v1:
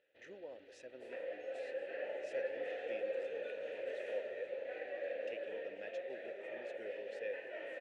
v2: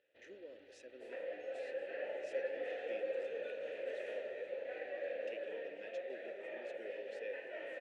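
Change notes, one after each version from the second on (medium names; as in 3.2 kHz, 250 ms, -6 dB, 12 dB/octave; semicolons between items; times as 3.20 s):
speech: add static phaser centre 340 Hz, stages 4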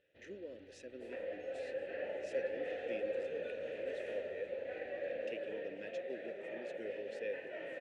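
speech +3.0 dB; master: add tone controls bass +15 dB, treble +1 dB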